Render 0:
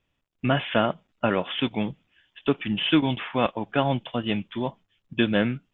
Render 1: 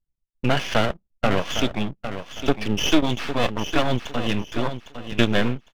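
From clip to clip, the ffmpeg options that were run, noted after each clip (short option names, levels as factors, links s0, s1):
-af "anlmdn=0.0251,aeval=exprs='max(val(0),0)':c=same,aecho=1:1:806|1612|2418:0.316|0.0791|0.0198,volume=2.24"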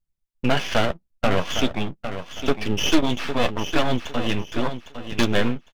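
-filter_complex "[0:a]aeval=exprs='0.447*(abs(mod(val(0)/0.447+3,4)-2)-1)':c=same,asplit=2[s0][s1];[s1]adelay=12,volume=0.299[s2];[s0][s2]amix=inputs=2:normalize=0"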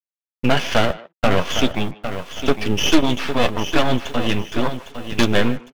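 -filter_complex "[0:a]acrusher=bits=7:mix=0:aa=0.5,asplit=2[s0][s1];[s1]adelay=150,highpass=300,lowpass=3400,asoftclip=type=hard:threshold=0.211,volume=0.126[s2];[s0][s2]amix=inputs=2:normalize=0,volume=1.5"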